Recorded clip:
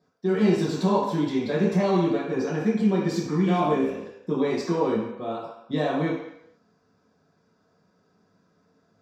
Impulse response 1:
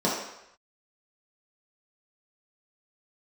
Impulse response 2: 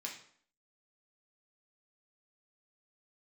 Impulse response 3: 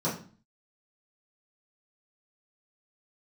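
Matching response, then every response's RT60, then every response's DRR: 1; 0.85, 0.60, 0.40 s; -7.0, -2.0, -11.0 dB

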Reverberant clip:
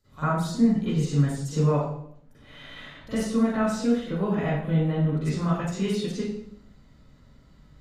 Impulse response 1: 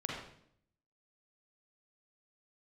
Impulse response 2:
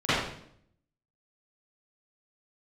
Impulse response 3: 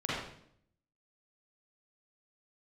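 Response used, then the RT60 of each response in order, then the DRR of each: 2; 0.65, 0.65, 0.65 s; -3.0, -18.5, -8.5 dB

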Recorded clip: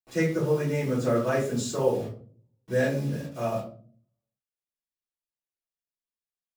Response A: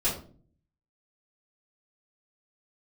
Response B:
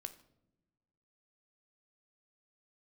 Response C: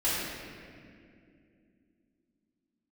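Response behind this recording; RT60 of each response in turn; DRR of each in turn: A; 0.45 s, not exponential, 2.4 s; -11.5, 8.5, -11.5 dB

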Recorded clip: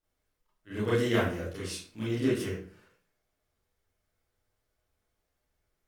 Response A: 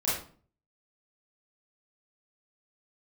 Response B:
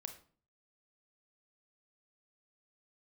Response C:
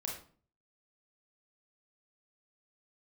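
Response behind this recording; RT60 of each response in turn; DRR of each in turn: A; 0.45, 0.45, 0.45 s; -9.5, 6.0, -2.0 dB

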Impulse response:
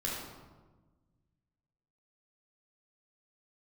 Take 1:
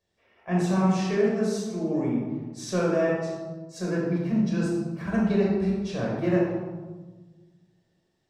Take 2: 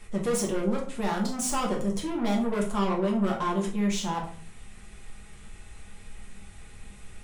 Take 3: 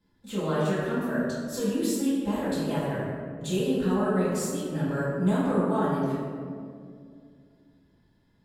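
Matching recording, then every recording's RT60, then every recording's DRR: 1; 1.3, 0.45, 2.3 s; -4.5, -1.5, -11.5 dB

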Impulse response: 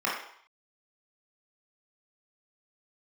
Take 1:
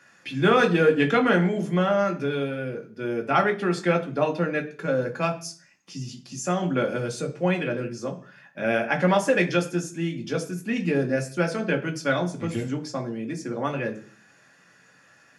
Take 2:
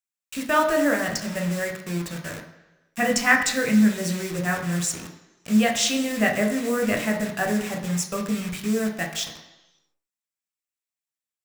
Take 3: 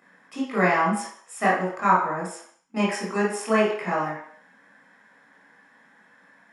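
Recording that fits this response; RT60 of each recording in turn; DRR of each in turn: 3; 0.40, 1.1, 0.65 s; 2.0, 2.0, -5.5 dB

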